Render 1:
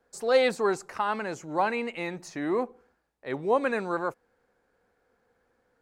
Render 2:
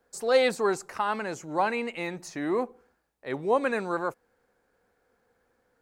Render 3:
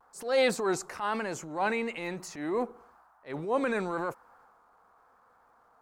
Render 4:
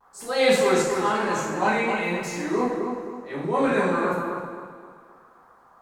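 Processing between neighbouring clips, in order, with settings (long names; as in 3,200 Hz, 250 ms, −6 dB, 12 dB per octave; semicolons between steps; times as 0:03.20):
high-shelf EQ 7,700 Hz +6 dB
noise in a band 680–1,400 Hz −62 dBFS; pitch vibrato 1 Hz 49 cents; transient designer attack −9 dB, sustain +4 dB; level −1.5 dB
feedback echo with a low-pass in the loop 261 ms, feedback 36%, low-pass 2,300 Hz, level −5 dB; convolution reverb, pre-delay 3 ms, DRR −8 dB; level −1.5 dB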